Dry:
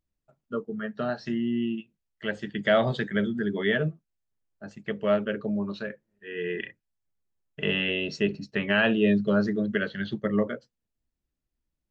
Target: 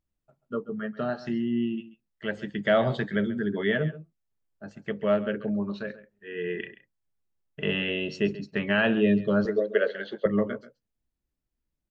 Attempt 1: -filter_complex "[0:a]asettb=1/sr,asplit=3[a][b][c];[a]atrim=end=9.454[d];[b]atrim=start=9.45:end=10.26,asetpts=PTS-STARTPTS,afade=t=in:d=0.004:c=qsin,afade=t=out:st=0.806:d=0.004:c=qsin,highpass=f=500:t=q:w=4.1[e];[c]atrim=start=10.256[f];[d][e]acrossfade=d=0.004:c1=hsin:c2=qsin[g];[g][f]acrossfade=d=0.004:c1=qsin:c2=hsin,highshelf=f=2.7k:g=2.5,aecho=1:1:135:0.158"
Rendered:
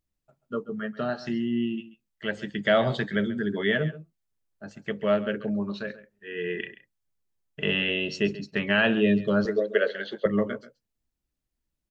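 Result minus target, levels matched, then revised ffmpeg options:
4000 Hz band +3.5 dB
-filter_complex "[0:a]asettb=1/sr,asplit=3[a][b][c];[a]atrim=end=9.454[d];[b]atrim=start=9.45:end=10.26,asetpts=PTS-STARTPTS,afade=t=in:d=0.004:c=qsin,afade=t=out:st=0.806:d=0.004:c=qsin,highpass=f=500:t=q:w=4.1[e];[c]atrim=start=10.256[f];[d][e]acrossfade=d=0.004:c1=hsin:c2=qsin[g];[g][f]acrossfade=d=0.004:c1=qsin:c2=hsin,highshelf=f=2.7k:g=-5,aecho=1:1:135:0.158"

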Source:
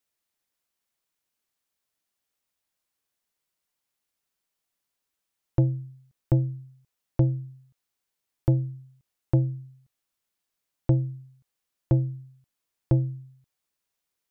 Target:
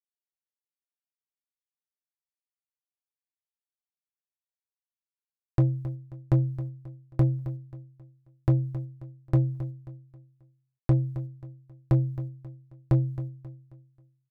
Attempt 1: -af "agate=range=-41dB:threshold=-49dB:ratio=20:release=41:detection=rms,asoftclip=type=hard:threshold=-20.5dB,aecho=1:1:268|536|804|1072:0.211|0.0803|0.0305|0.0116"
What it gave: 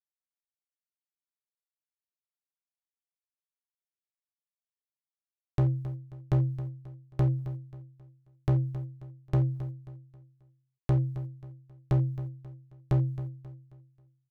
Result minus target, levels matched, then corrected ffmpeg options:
hard clip: distortion +10 dB
-af "agate=range=-41dB:threshold=-49dB:ratio=20:release=41:detection=rms,asoftclip=type=hard:threshold=-14dB,aecho=1:1:268|536|804|1072:0.211|0.0803|0.0305|0.0116"

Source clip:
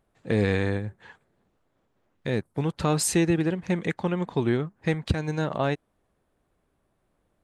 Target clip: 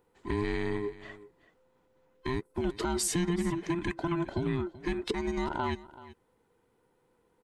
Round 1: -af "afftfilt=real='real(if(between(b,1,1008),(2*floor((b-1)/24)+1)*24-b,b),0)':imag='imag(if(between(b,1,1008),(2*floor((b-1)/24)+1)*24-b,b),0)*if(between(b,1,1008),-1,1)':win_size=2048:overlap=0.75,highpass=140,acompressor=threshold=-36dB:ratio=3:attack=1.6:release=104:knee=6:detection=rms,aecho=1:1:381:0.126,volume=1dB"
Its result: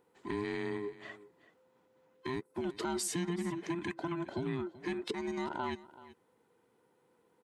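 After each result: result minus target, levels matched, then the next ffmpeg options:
compressor: peak gain reduction +5 dB; 125 Hz band -2.5 dB
-af "afftfilt=real='real(if(between(b,1,1008),(2*floor((b-1)/24)+1)*24-b,b),0)':imag='imag(if(between(b,1,1008),(2*floor((b-1)/24)+1)*24-b,b),0)*if(between(b,1,1008),-1,1)':win_size=2048:overlap=0.75,highpass=140,acompressor=threshold=-27.5dB:ratio=3:attack=1.6:release=104:knee=6:detection=rms,aecho=1:1:381:0.126,volume=1dB"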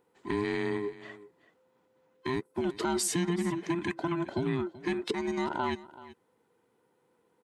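125 Hz band -2.5 dB
-af "afftfilt=real='real(if(between(b,1,1008),(2*floor((b-1)/24)+1)*24-b,b),0)':imag='imag(if(between(b,1,1008),(2*floor((b-1)/24)+1)*24-b,b),0)*if(between(b,1,1008),-1,1)':win_size=2048:overlap=0.75,acompressor=threshold=-27.5dB:ratio=3:attack=1.6:release=104:knee=6:detection=rms,aecho=1:1:381:0.126,volume=1dB"

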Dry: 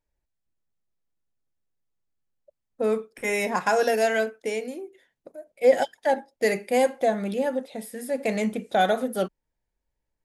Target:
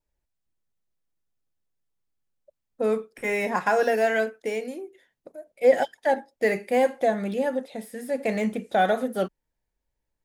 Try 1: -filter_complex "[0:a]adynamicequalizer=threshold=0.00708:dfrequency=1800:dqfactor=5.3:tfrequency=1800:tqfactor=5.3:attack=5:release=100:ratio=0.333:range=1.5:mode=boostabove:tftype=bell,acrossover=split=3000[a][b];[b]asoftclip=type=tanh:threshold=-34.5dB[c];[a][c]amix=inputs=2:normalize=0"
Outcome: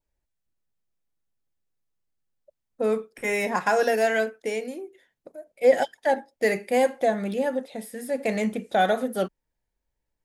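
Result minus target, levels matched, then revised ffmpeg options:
soft clip: distortion -8 dB
-filter_complex "[0:a]adynamicequalizer=threshold=0.00708:dfrequency=1800:dqfactor=5.3:tfrequency=1800:tqfactor=5.3:attack=5:release=100:ratio=0.333:range=1.5:mode=boostabove:tftype=bell,acrossover=split=3000[a][b];[b]asoftclip=type=tanh:threshold=-44.5dB[c];[a][c]amix=inputs=2:normalize=0"

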